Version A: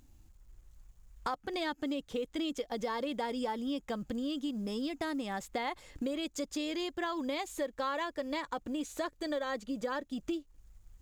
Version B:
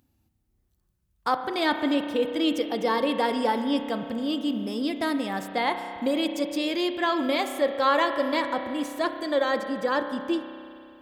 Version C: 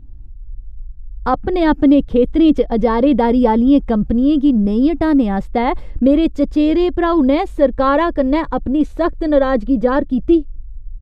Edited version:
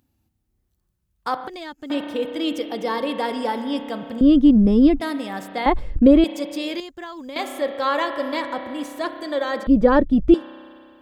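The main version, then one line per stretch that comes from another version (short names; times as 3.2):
B
1.48–1.9 from A
4.21–5 from C
5.66–6.24 from C
6.8–7.36 from A
9.67–10.34 from C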